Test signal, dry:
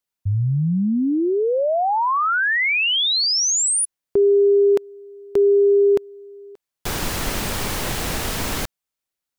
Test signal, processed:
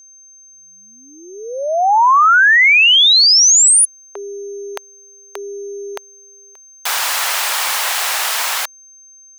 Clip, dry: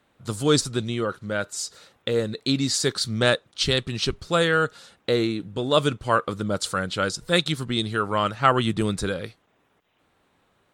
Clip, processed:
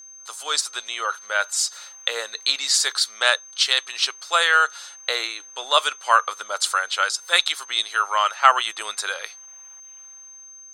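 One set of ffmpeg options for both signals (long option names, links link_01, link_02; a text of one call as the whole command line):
ffmpeg -i in.wav -af "highpass=frequency=780:width=0.5412,highpass=frequency=780:width=1.3066,dynaudnorm=framelen=120:gausssize=13:maxgain=10dB,aeval=exprs='val(0)+0.00891*sin(2*PI*6300*n/s)':channel_layout=same" out.wav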